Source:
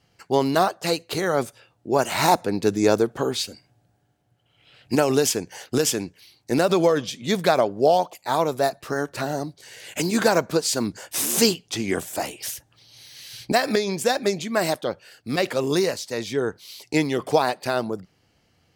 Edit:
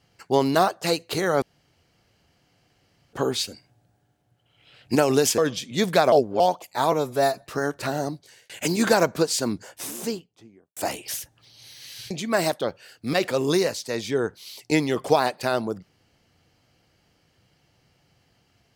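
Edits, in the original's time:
1.42–3.13 room tone
5.38–6.89 cut
7.63–7.91 reverse
8.43–8.76 stretch 1.5×
9.48–9.84 fade out
10.48–12.11 studio fade out
13.45–14.33 cut

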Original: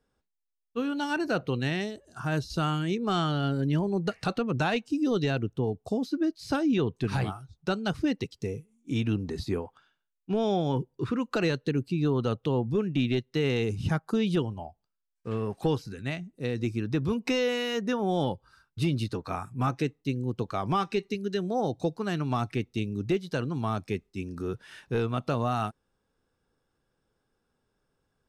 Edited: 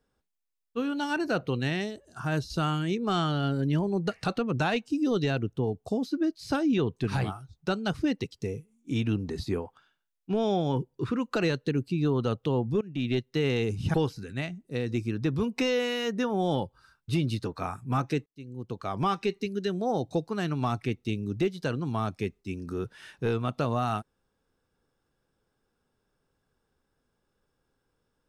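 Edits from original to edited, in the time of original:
12.81–13.15 fade in, from -20 dB
13.94–15.63 cut
19.95–20.76 fade in

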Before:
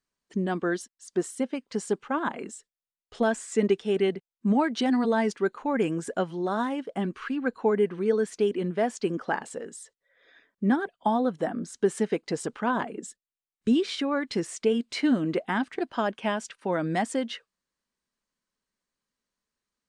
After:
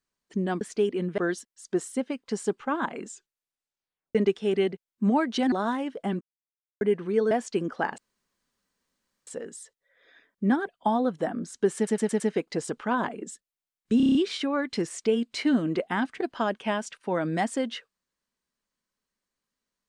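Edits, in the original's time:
2.5 tape stop 1.08 s
4.95–6.44 cut
7.13–7.73 mute
8.23–8.8 move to 0.61
9.47 insert room tone 1.29 s
11.96 stutter 0.11 s, 5 plays
13.73 stutter 0.03 s, 7 plays

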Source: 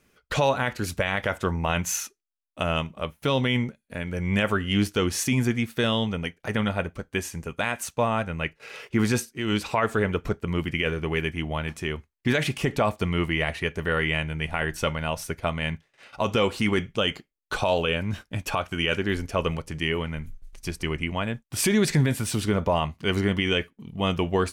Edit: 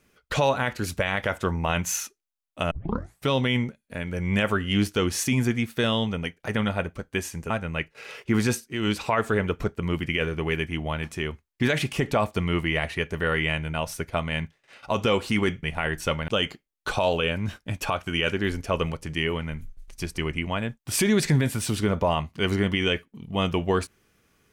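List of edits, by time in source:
2.71 tape start 0.57 s
7.5–8.15 cut
14.39–15.04 move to 16.93

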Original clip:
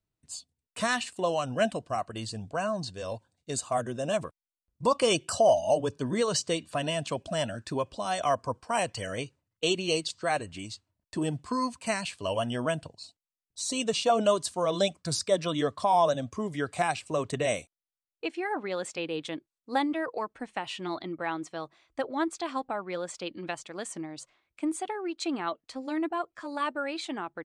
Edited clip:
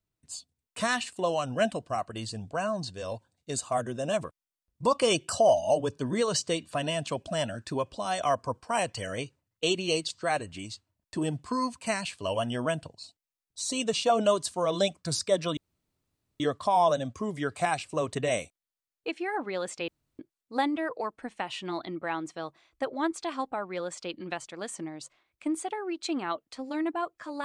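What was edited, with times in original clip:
15.57 insert room tone 0.83 s
19.05–19.36 room tone

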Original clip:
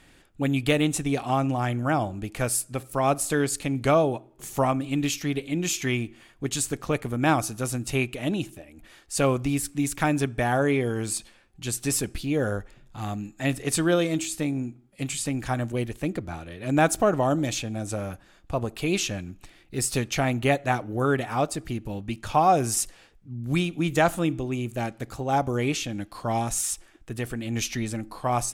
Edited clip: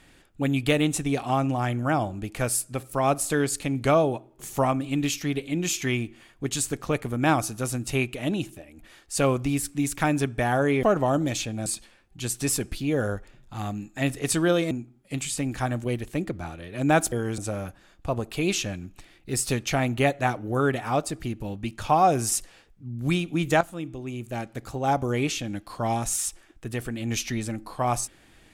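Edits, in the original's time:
10.83–11.09 swap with 17–17.83
14.14–14.59 cut
24.06–25.23 fade in, from -13 dB

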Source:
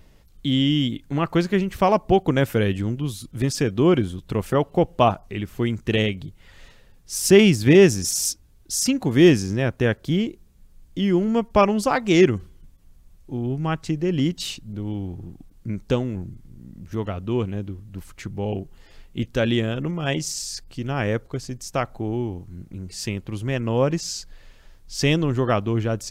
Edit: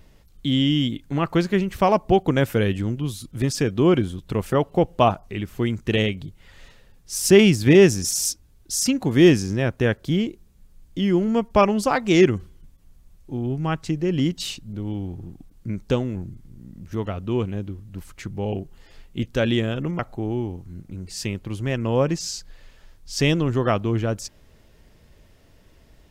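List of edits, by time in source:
19.99–21.81 cut

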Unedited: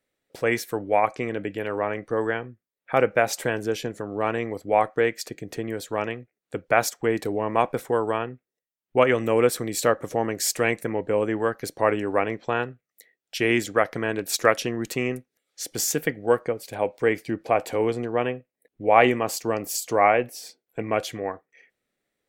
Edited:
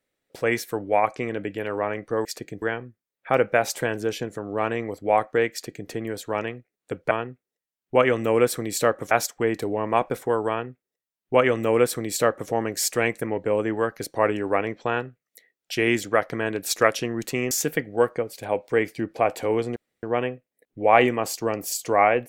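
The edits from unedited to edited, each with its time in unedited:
5.15–5.52 copy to 2.25
8.13–10.13 copy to 6.74
15.14–15.81 cut
18.06 insert room tone 0.27 s

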